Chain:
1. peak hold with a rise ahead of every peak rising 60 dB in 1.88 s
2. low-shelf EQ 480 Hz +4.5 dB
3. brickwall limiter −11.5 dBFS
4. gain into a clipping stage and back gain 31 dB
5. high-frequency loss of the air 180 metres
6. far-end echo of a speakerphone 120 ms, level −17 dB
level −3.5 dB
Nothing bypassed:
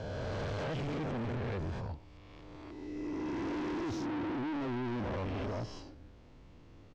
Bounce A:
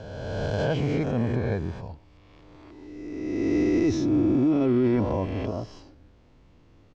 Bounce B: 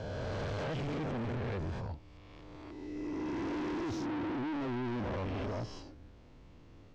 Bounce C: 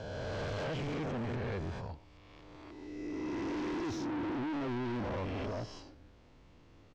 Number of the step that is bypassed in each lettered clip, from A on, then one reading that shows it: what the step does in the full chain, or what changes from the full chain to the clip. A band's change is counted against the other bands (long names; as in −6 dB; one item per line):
4, distortion level −3 dB
6, echo-to-direct ratio −28.0 dB to none audible
2, 125 Hz band −1.5 dB